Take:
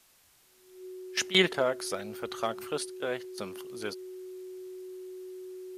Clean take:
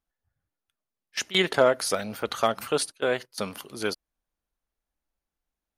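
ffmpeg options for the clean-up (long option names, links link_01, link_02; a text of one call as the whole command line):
ffmpeg -i in.wav -af "bandreject=frequency=370:width=30,agate=range=-21dB:threshold=-54dB,asetnsamples=nb_out_samples=441:pad=0,asendcmd='1.52 volume volume 8dB',volume=0dB" out.wav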